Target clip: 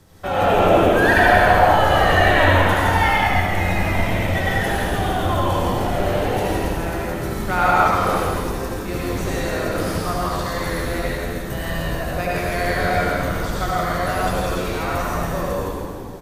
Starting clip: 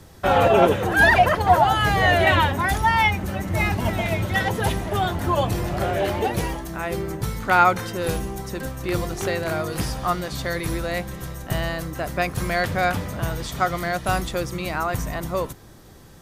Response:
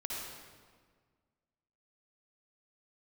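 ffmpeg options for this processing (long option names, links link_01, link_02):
-filter_complex "[0:a]asplit=8[link_01][link_02][link_03][link_04][link_05][link_06][link_07][link_08];[link_02]adelay=165,afreqshift=-91,volume=-3.5dB[link_09];[link_03]adelay=330,afreqshift=-182,volume=-9.2dB[link_10];[link_04]adelay=495,afreqshift=-273,volume=-14.9dB[link_11];[link_05]adelay=660,afreqshift=-364,volume=-20.5dB[link_12];[link_06]adelay=825,afreqshift=-455,volume=-26.2dB[link_13];[link_07]adelay=990,afreqshift=-546,volume=-31.9dB[link_14];[link_08]adelay=1155,afreqshift=-637,volume=-37.6dB[link_15];[link_01][link_09][link_10][link_11][link_12][link_13][link_14][link_15]amix=inputs=8:normalize=0[link_16];[1:a]atrim=start_sample=2205,asetrate=34839,aresample=44100[link_17];[link_16][link_17]afir=irnorm=-1:irlink=0,volume=-3dB"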